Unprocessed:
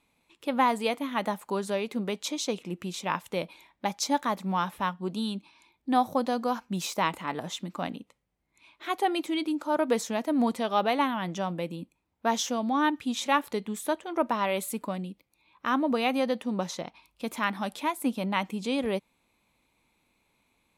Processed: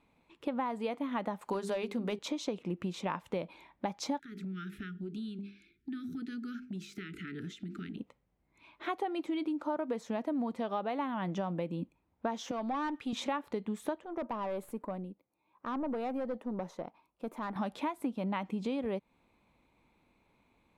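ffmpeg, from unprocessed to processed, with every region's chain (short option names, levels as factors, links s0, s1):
-filter_complex "[0:a]asettb=1/sr,asplit=3[s0][s1][s2];[s0]atrim=end=1.414[s3];[s1]atrim=start=1.41:end=2.19,asetpts=PTS-STARTPTS,afade=t=in:d=0.004:c=qsin,afade=t=out:st=0.776:d=0.004:c=qsin,highshelf=f=2900:g=9.5,bandreject=f=50:t=h:w=6,bandreject=f=100:t=h:w=6,bandreject=f=150:t=h:w=6,bandreject=f=200:t=h:w=6,bandreject=f=250:t=h:w=6,bandreject=f=300:t=h:w=6,bandreject=f=350:t=h:w=6,bandreject=f=400:t=h:w=6,volume=13.3,asoftclip=hard,volume=0.075[s4];[s2]atrim=start=2.186[s5];[s3][s4]acrossfade=d=0.004:c1=hsin:c2=qsin[s6];[s6][s5]acrossfade=d=0.004:c1=qsin:c2=hsin,asettb=1/sr,asplit=3[s7][s8][s9];[s7]atrim=end=4.194[s10];[s8]atrim=start=4.19:end=7.98,asetpts=PTS-STARTPTS,afade=t=in:d=0.004:c=qsin,afade=t=out:st=3.786:d=0.004:c=qsin,asuperstop=centerf=750:order=20:qfactor=0.84,bandreject=f=50:t=h:w=6,bandreject=f=100:t=h:w=6,bandreject=f=150:t=h:w=6,bandreject=f=200:t=h:w=6,bandreject=f=250:t=h:w=6,bandreject=f=300:t=h:w=6,bandreject=f=350:t=h:w=6,bandreject=f=400:t=h:w=6,bandreject=f=450:t=h:w=6,acompressor=threshold=0.01:ratio=10:attack=3.2:release=140:knee=1:detection=peak[s11];[s9]atrim=start=7.976[s12];[s10][s11]acrossfade=d=0.004:c1=hsin:c2=qsin[s13];[s13][s12]acrossfade=d=0.004:c1=qsin:c2=hsin,asettb=1/sr,asplit=3[s14][s15][s16];[s14]atrim=end=12.514[s17];[s15]atrim=start=12.51:end=13.13,asetpts=PTS-STARTPTS,afade=t=in:d=0.004:c=qsin,afade=t=out:st=0.616:d=0.004:c=qsin,highpass=f=540:p=1,aeval=exprs='(tanh(28.2*val(0)+0.15)-tanh(0.15))/28.2':c=same[s18];[s16]atrim=start=13.126[s19];[s17][s18]acrossfade=d=0.004:c1=hsin:c2=qsin[s20];[s20][s19]acrossfade=d=0.004:c1=qsin:c2=hsin,asettb=1/sr,asplit=3[s21][s22][s23];[s21]atrim=end=14.054[s24];[s22]atrim=start=14.05:end=17.56,asetpts=PTS-STARTPTS,afade=t=in:d=0.004:c=qsin,afade=t=out:st=3.506:d=0.004:c=qsin,highpass=f=500:p=1,equalizer=f=3600:w=0.39:g=-14.5,aeval=exprs='(tanh(39.8*val(0)+0.3)-tanh(0.3))/39.8':c=same[s25];[s23]atrim=start=17.556[s26];[s24][s25]acrossfade=d=0.004:c1=hsin:c2=qsin[s27];[s27][s26]acrossfade=d=0.004:c1=qsin:c2=hsin,lowpass=f=1300:p=1,acompressor=threshold=0.0178:ratio=10,volume=1.58"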